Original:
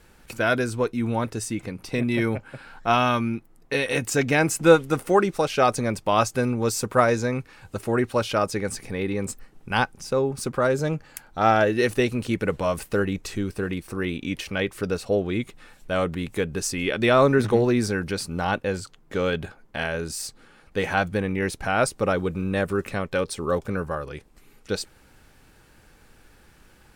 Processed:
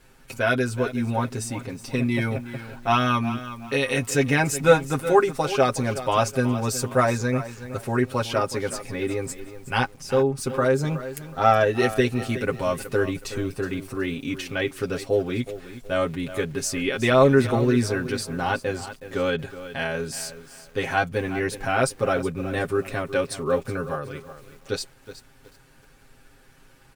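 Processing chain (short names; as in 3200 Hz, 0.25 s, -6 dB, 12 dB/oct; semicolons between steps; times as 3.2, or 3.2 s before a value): comb 7.5 ms, depth 84%; lo-fi delay 0.37 s, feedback 35%, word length 7-bit, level -13 dB; gain -2.5 dB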